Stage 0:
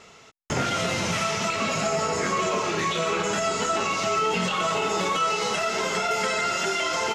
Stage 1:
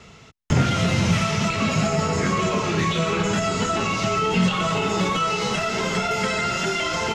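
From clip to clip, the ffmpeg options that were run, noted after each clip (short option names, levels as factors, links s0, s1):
-filter_complex "[0:a]bass=f=250:g=14,treble=f=4000:g=-2,acrossover=split=190|740|4300[s0][s1][s2][s3];[s2]crystalizer=i=2:c=0[s4];[s0][s1][s4][s3]amix=inputs=4:normalize=0"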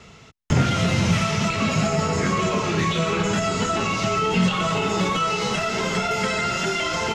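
-af anull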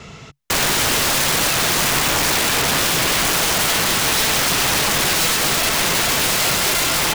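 -af "aeval=exprs='(mod(11.2*val(0)+1,2)-1)/11.2':c=same,equalizer=f=140:w=6.3:g=5,volume=2.51"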